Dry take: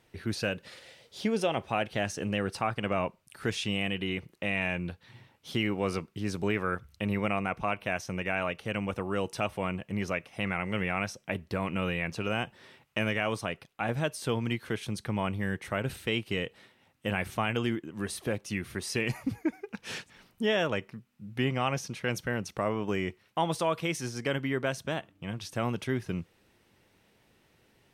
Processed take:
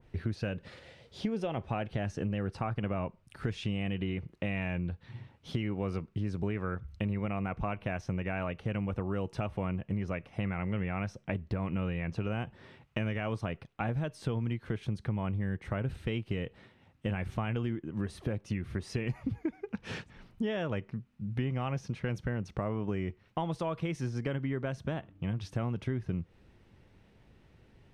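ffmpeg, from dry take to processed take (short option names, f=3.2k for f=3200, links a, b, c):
-filter_complex "[0:a]asettb=1/sr,asplit=3[a][b][c];[a]atrim=end=19.164[d];[b]atrim=start=19.16:end=19.61,asetpts=PTS-STARTPTS,afade=t=in:d=0.004:c=qsin,afade=t=out:st=0.446:d=0.004:c=qsin,equalizer=f=3.3k:w=2.2:g=6.5[e];[c]atrim=start=19.606[f];[d][e]acrossfade=d=0.004:c1=hsin:c2=qsin[g];[g][f]acrossfade=d=0.004:c1=qsin:c2=hsin,aemphasis=mode=reproduction:type=bsi,acompressor=threshold=-30dB:ratio=5,adynamicequalizer=threshold=0.002:dfrequency=2100:dqfactor=0.7:tfrequency=2100:tqfactor=0.7:attack=5:release=100:ratio=0.375:range=1.5:mode=cutabove:tftype=highshelf"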